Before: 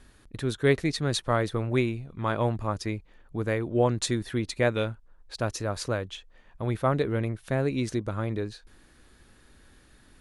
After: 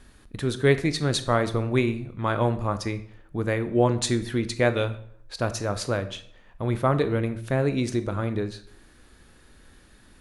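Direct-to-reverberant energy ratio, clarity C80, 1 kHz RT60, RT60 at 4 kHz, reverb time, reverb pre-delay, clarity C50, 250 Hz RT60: 10.5 dB, 17.0 dB, 0.60 s, 0.50 s, 0.60 s, 18 ms, 14.0 dB, 0.70 s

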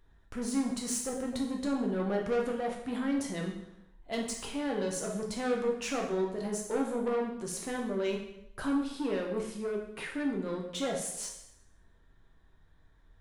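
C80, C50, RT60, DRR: 8.5 dB, 5.5 dB, 0.85 s, -0.5 dB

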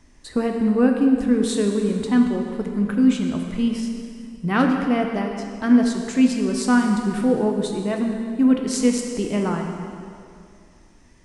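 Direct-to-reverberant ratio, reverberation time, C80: 2.0 dB, 2.4 s, 5.0 dB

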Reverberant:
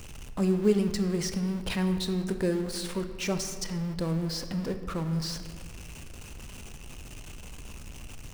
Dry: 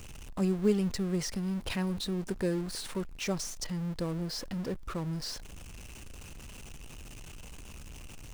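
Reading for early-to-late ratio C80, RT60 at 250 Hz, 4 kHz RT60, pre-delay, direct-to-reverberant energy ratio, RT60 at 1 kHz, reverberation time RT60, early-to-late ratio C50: 10.5 dB, 2.4 s, 1.0 s, 19 ms, 8.0 dB, 1.8 s, 1.9 s, 9.5 dB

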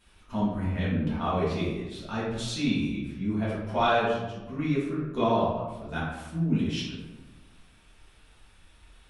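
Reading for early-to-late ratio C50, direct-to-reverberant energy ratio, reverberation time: 0.5 dB, -9.0 dB, 1.1 s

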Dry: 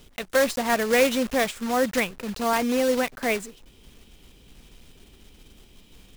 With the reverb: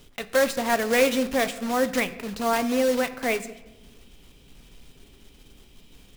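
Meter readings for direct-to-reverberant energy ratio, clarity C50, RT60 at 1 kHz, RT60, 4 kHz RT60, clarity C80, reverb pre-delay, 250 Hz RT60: 10.0 dB, 15.0 dB, 1.0 s, 1.1 s, 0.80 s, 17.0 dB, 7 ms, 1.7 s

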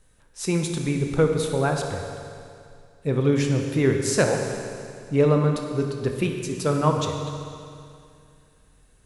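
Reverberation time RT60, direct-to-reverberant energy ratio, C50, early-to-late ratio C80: 2.4 s, 3.0 dB, 4.0 dB, 5.0 dB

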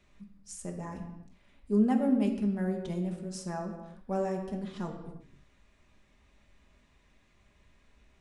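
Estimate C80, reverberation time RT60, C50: 9.0 dB, no single decay rate, 7.0 dB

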